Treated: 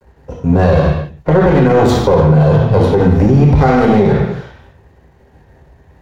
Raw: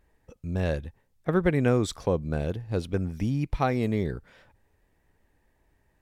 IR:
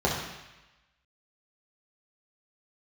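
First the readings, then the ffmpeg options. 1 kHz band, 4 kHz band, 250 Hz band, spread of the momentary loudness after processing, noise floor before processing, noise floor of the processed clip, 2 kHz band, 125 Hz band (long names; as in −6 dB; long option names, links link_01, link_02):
+18.5 dB, +13.0 dB, +16.5 dB, 7 LU, −70 dBFS, −48 dBFS, +13.5 dB, +18.0 dB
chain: -filter_complex "[0:a]aeval=exprs='max(val(0),0)':channel_layout=same[link_01];[1:a]atrim=start_sample=2205,afade=type=out:start_time=0.38:duration=0.01,atrim=end_sample=17199[link_02];[link_01][link_02]afir=irnorm=-1:irlink=0,alimiter=level_in=11dB:limit=-1dB:release=50:level=0:latency=1,volume=-1dB"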